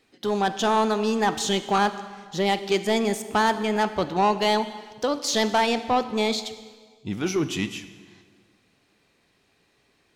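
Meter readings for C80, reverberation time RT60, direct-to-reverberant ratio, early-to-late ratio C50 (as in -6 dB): 14.0 dB, 1.6 s, 12.0 dB, 12.5 dB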